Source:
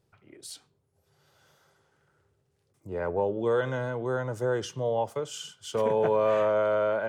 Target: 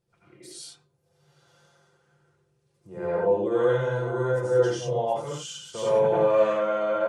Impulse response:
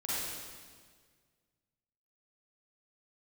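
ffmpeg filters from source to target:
-filter_complex "[0:a]aecho=1:1:5.8:0.58[link_01];[1:a]atrim=start_sample=2205,atrim=end_sample=4410,asetrate=22491,aresample=44100[link_02];[link_01][link_02]afir=irnorm=-1:irlink=0,volume=-6.5dB"

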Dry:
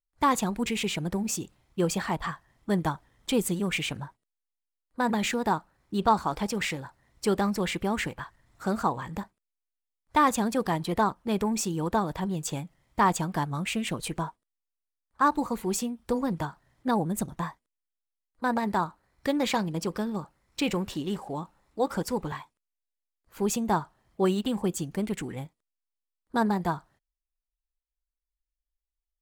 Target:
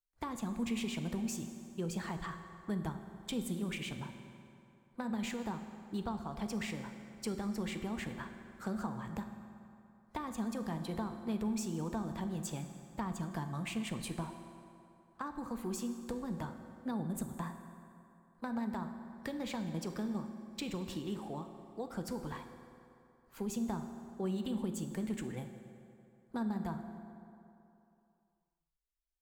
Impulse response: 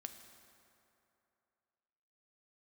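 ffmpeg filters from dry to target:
-filter_complex "[0:a]acrossover=split=200[link_01][link_02];[link_02]acompressor=threshold=-33dB:ratio=10[link_03];[link_01][link_03]amix=inputs=2:normalize=0[link_04];[1:a]atrim=start_sample=2205[link_05];[link_04][link_05]afir=irnorm=-1:irlink=0,volume=-1dB"

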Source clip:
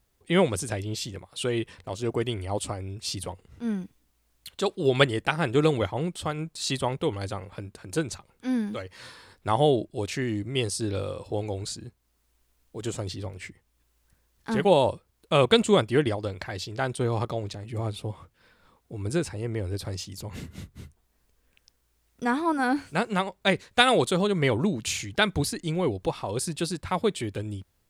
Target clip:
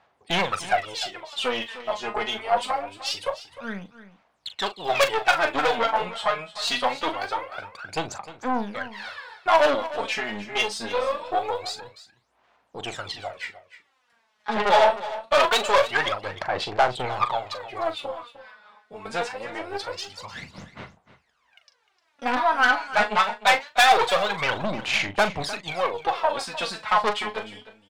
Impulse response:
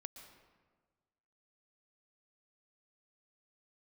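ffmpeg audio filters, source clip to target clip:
-filter_complex "[0:a]highpass=190,lowpass=3400,aphaser=in_gain=1:out_gain=1:delay=4.8:decay=0.79:speed=0.24:type=sinusoidal,aeval=exprs='(tanh(11.2*val(0)+0.55)-tanh(0.55))/11.2':channel_layout=same,lowshelf=frequency=500:width_type=q:width=1.5:gain=-12,asplit=2[link_01][link_02];[link_02]adelay=40,volume=-11dB[link_03];[link_01][link_03]amix=inputs=2:normalize=0,aecho=1:1:304:0.178,volume=8dB"

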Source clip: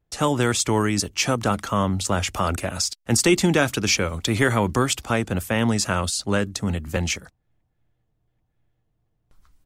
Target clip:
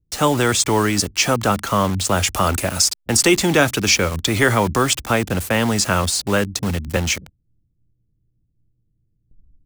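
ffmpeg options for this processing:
ffmpeg -i in.wav -filter_complex "[0:a]asettb=1/sr,asplit=3[link_01][link_02][link_03];[link_01]atrim=end=2.074[link_04];[link_02]atrim=start=2.07:end=3.01,asetpts=PTS-STARTPTS,afade=type=in:duration=0.004:curve=qsin,afade=type=out:start_time=0.936:duration=0.004:curve=qsin,equalizer=frequency=13000:width_type=o:width=1.3:gain=7.5[link_05];[link_03]atrim=start=3.006[link_06];[link_04][link_05]acrossfade=duration=0.004:curve1=hsin:curve2=qsin[link_07];[link_07][link_06]acrossfade=duration=0.004:curve1=qsin:curve2=hsin,acrossover=split=350[link_08][link_09];[link_08]alimiter=limit=-21dB:level=0:latency=1:release=12[link_10];[link_09]acrusher=bits=5:mix=0:aa=0.000001[link_11];[link_10][link_11]amix=inputs=2:normalize=0,volume=5dB" out.wav

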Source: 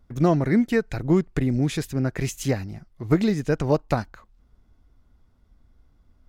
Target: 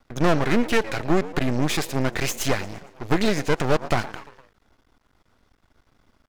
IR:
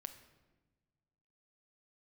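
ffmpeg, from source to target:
-filter_complex "[0:a]asplit=5[link_01][link_02][link_03][link_04][link_05];[link_02]adelay=115,afreqshift=95,volume=-21dB[link_06];[link_03]adelay=230,afreqshift=190,volume=-26.8dB[link_07];[link_04]adelay=345,afreqshift=285,volume=-32.7dB[link_08];[link_05]adelay=460,afreqshift=380,volume=-38.5dB[link_09];[link_01][link_06][link_07][link_08][link_09]amix=inputs=5:normalize=0,asplit=2[link_10][link_11];[link_11]highpass=frequency=720:poles=1,volume=20dB,asoftclip=type=tanh:threshold=-6dB[link_12];[link_10][link_12]amix=inputs=2:normalize=0,lowpass=frequency=5600:poles=1,volume=-6dB,aeval=exprs='max(val(0),0)':channel_layout=same"

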